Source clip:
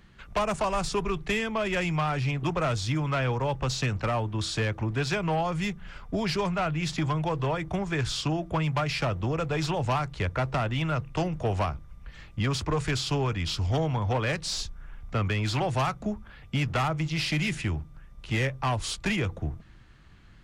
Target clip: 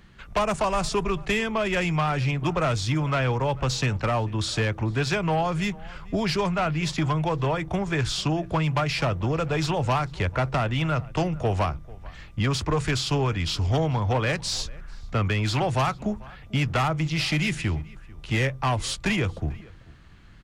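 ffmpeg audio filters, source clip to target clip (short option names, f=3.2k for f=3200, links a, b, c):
-filter_complex "[0:a]asplit=2[a][b];[b]adelay=443.1,volume=-22dB,highshelf=f=4k:g=-9.97[c];[a][c]amix=inputs=2:normalize=0,volume=3dB"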